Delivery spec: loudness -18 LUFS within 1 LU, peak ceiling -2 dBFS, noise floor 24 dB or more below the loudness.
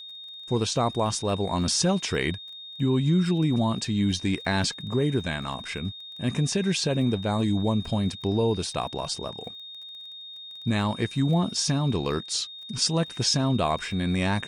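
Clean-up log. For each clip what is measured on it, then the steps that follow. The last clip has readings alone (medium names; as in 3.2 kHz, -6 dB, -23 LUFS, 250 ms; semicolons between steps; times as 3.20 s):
tick rate 19 per s; steady tone 3.7 kHz; tone level -39 dBFS; loudness -26.0 LUFS; peak level -11.0 dBFS; loudness target -18.0 LUFS
-> de-click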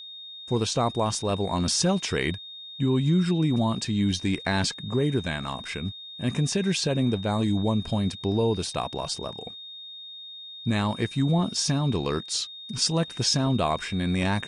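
tick rate 0 per s; steady tone 3.7 kHz; tone level -39 dBFS
-> band-stop 3.7 kHz, Q 30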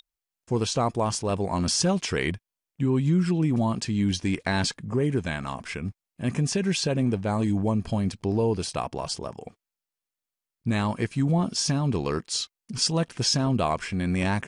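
steady tone not found; loudness -26.0 LUFS; peak level -11.0 dBFS; loudness target -18.0 LUFS
-> trim +8 dB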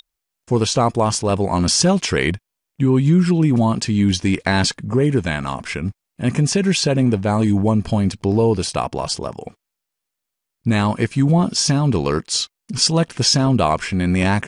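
loudness -18.0 LUFS; peak level -3.0 dBFS; noise floor -81 dBFS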